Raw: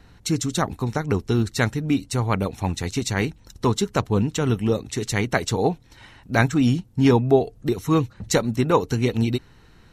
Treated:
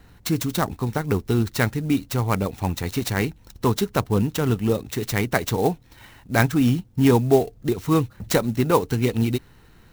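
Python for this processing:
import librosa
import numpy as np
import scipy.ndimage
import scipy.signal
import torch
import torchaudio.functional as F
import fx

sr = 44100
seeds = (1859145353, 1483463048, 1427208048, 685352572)

y = fx.clock_jitter(x, sr, seeds[0], jitter_ms=0.029)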